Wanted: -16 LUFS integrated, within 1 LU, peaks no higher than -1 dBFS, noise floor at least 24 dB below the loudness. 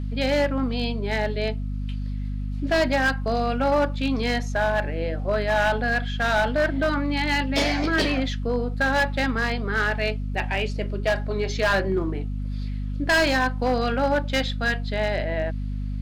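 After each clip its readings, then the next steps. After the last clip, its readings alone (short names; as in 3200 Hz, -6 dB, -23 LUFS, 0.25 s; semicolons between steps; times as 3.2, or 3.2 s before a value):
clipped 1.8%; flat tops at -15.5 dBFS; hum 50 Hz; harmonics up to 250 Hz; hum level -26 dBFS; loudness -24.0 LUFS; peak -15.5 dBFS; loudness target -16.0 LUFS
-> clip repair -15.5 dBFS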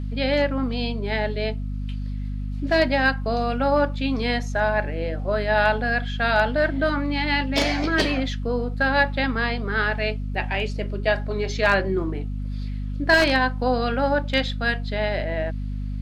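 clipped 0.0%; hum 50 Hz; harmonics up to 250 Hz; hum level -26 dBFS
-> notches 50/100/150/200/250 Hz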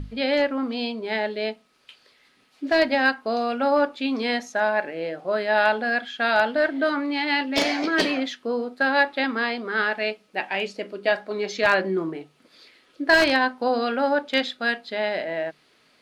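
hum none; loudness -23.5 LUFS; peak -5.5 dBFS; loudness target -16.0 LUFS
-> gain +7.5 dB; limiter -1 dBFS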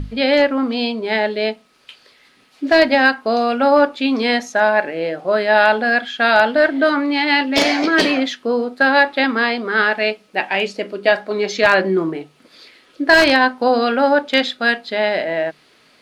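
loudness -16.5 LUFS; peak -1.0 dBFS; noise floor -53 dBFS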